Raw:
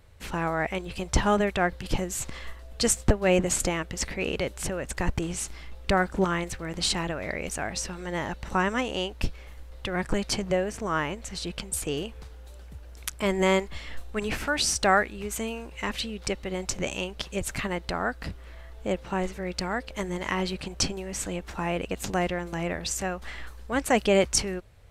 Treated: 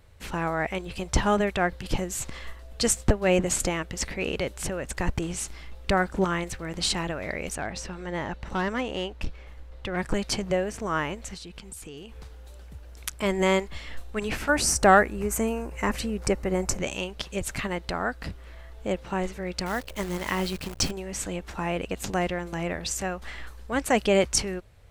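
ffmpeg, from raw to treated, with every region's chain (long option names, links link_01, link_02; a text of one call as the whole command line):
ffmpeg -i in.wav -filter_complex "[0:a]asettb=1/sr,asplit=3[link_01][link_02][link_03];[link_01]atrim=end=7.554[link_04];[link_02]atrim=start=7.55:end=9.97,asetpts=PTS-STARTPTS,afade=type=in:duration=0.004:curve=qsin,afade=type=out:start_time=2.416:duration=0.004:curve=qsin,volume=22dB,asoftclip=hard,volume=-22dB,lowpass=frequency=3400:poles=1[link_05];[link_03]atrim=start=9.966[link_06];[link_04][link_05]acrossfade=duration=0.004:curve1=hsin:curve2=qsin[link_07];[link_07][link_06]acrossfade=duration=0.004:curve1=qsin:curve2=hsin,asettb=1/sr,asplit=3[link_08][link_09][link_10];[link_08]atrim=end=11.344[link_11];[link_09]atrim=start=11.34:end=12.16,asetpts=PTS-STARTPTS,afade=type=in:duration=0.004:curve=qsin,afade=type=out:start_time=0.816:duration=0.004:curve=qsin,equalizer=frequency=590:width=5.5:gain=-9,acompressor=threshold=-38dB:ratio=6:attack=3.2:release=140:knee=1:detection=peak[link_12];[link_10]atrim=start=12.156[link_13];[link_11][link_12]acrossfade=duration=0.004:curve1=hsin:curve2=qsin[link_14];[link_14][link_13]acrossfade=duration=0.004:curve1=qsin:curve2=hsin,asettb=1/sr,asplit=3[link_15][link_16][link_17];[link_15]atrim=end=14.494[link_18];[link_16]atrim=start=14.49:end=16.78,asetpts=PTS-STARTPTS,afade=type=in:duration=0.004:curve=qsin,afade=type=out:start_time=2.286:duration=0.004:curve=qsin,equalizer=frequency=3500:width=1.3:gain=-14.5,acontrast=56[link_19];[link_17]atrim=start=16.776[link_20];[link_18][link_19]acrossfade=duration=0.004:curve1=hsin:curve2=qsin[link_21];[link_21][link_20]acrossfade=duration=0.004:curve1=qsin:curve2=hsin,asettb=1/sr,asplit=3[link_22][link_23][link_24];[link_22]atrim=end=19.664[link_25];[link_23]atrim=start=19.66:end=20.91,asetpts=PTS-STARTPTS,afade=type=in:duration=0.004:curve=qsin,afade=type=out:start_time=1.246:duration=0.004:curve=qsin,lowshelf=frequency=130:gain=2.5,acrusher=bits=7:dc=4:mix=0:aa=0.000001[link_26];[link_24]atrim=start=20.906[link_27];[link_25][link_26]acrossfade=duration=0.004:curve1=hsin:curve2=qsin[link_28];[link_28][link_27]acrossfade=duration=0.004:curve1=qsin:curve2=hsin" out.wav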